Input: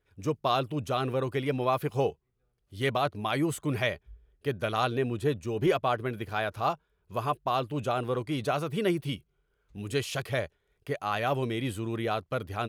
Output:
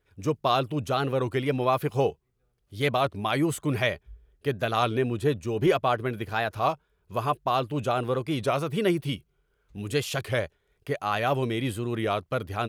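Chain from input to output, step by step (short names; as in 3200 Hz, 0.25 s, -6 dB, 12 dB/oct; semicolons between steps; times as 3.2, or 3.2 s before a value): record warp 33 1/3 rpm, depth 100 cents; gain +3 dB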